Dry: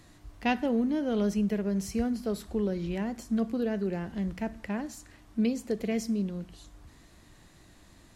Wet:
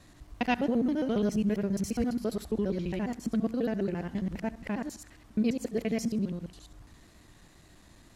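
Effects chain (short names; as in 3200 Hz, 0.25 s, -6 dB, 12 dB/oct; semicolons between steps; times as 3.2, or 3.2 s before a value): local time reversal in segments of 68 ms; wow and flutter 23 cents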